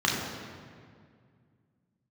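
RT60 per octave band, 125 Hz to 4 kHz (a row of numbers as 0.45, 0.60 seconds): 3.0, 2.7, 2.2, 1.9, 1.8, 1.4 seconds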